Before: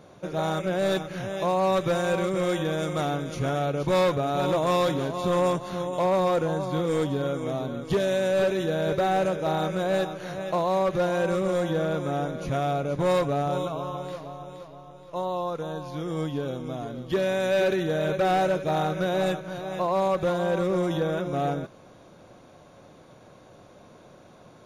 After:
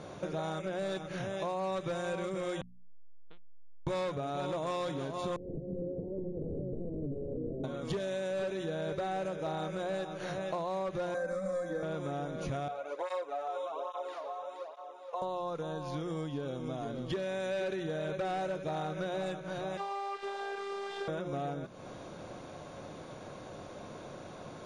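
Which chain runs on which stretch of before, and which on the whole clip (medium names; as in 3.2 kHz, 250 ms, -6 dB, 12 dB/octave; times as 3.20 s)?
2.61–3.87 s: doubling 12 ms -10 dB + LPC vocoder at 8 kHz pitch kept + transformer saturation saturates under 550 Hz
5.36–7.64 s: integer overflow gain 22.5 dB + steep low-pass 510 Hz 48 dB/octave
11.14–11.83 s: static phaser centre 590 Hz, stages 8 + comb 3.9 ms, depth 79%
12.68–15.22 s: high-pass 490 Hz 24 dB/octave + treble shelf 2.6 kHz -9 dB + cancelling through-zero flanger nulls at 1.2 Hz, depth 3.6 ms
19.77–21.08 s: one-bit delta coder 64 kbps, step -30 dBFS + three-band isolator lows -24 dB, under 480 Hz, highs -19 dB, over 4.6 kHz + robot voice 398 Hz
whole clip: steep low-pass 10 kHz 36 dB/octave; hum notches 60/120/180/240 Hz; compression 5:1, threshold -40 dBFS; trim +5 dB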